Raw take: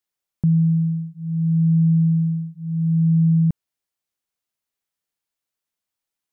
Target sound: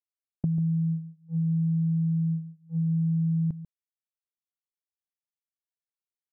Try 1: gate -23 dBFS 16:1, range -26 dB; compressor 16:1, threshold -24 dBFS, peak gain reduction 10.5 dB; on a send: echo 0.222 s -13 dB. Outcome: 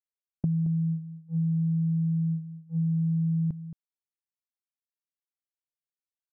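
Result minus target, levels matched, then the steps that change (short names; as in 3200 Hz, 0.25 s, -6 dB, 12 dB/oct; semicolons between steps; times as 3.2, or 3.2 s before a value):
echo 80 ms late
change: echo 0.142 s -13 dB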